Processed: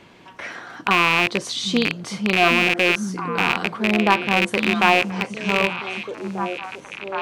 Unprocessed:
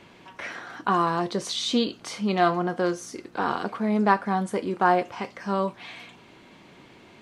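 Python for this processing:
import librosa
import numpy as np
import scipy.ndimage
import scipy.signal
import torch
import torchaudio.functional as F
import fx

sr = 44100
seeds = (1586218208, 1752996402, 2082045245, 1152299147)

y = fx.rattle_buzz(x, sr, strikes_db=-37.0, level_db=-9.0)
y = fx.echo_stepped(y, sr, ms=769, hz=160.0, octaves=1.4, feedback_pct=70, wet_db=-2.0)
y = y * 10.0 ** (2.5 / 20.0)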